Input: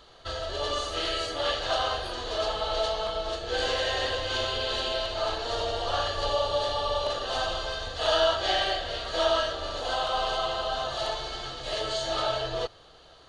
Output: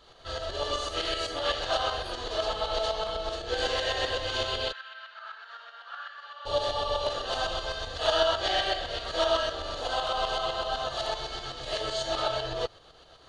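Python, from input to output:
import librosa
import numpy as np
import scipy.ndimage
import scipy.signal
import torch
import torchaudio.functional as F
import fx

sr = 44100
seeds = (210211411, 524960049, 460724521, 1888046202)

y = fx.tremolo_shape(x, sr, shape='saw_up', hz=7.9, depth_pct=55)
y = fx.ladder_bandpass(y, sr, hz=1600.0, resonance_pct=70, at=(4.71, 6.45), fade=0.02)
y = y * librosa.db_to_amplitude(1.5)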